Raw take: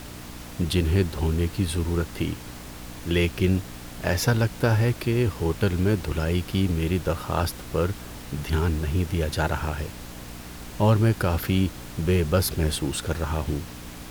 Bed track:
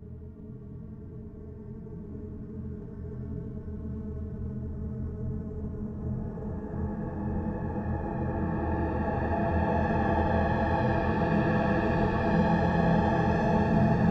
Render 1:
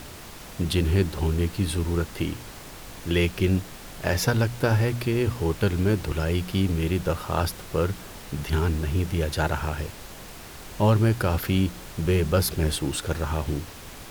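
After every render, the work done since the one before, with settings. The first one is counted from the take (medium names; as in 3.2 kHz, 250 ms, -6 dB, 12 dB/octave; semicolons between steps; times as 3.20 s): de-hum 60 Hz, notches 5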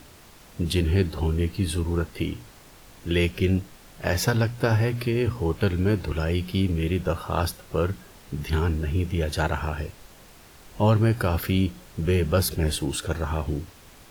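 noise print and reduce 8 dB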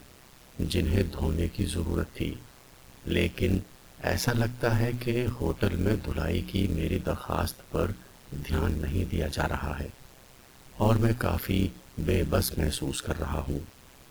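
AM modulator 130 Hz, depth 75%; companded quantiser 6-bit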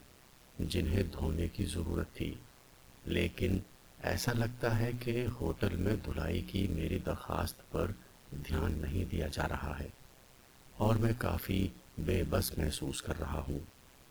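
trim -6.5 dB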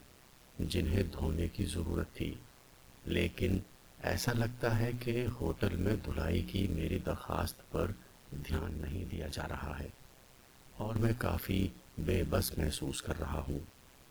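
6.09–6.60 s: doubling 23 ms -8 dB; 8.57–10.96 s: compression, threshold -33 dBFS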